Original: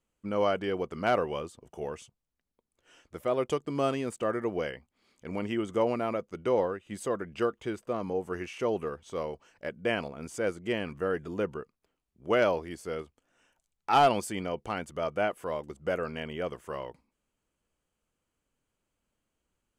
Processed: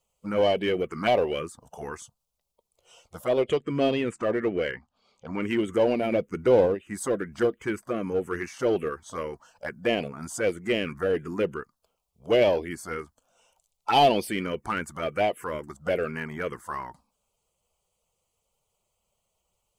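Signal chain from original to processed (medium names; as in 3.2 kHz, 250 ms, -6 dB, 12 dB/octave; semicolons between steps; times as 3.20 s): coarse spectral quantiser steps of 15 dB; 3.40–5.41 s: low-pass 6.3 kHz -> 3.8 kHz 12 dB/octave; 6.12–6.75 s: bass shelf 460 Hz +6 dB; touch-sensitive phaser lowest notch 280 Hz, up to 1.4 kHz, full sweep at -25 dBFS; bass shelf 190 Hz -8 dB; in parallel at -6 dB: hard clipper -33.5 dBFS, distortion -6 dB; on the sum: trim +6.5 dB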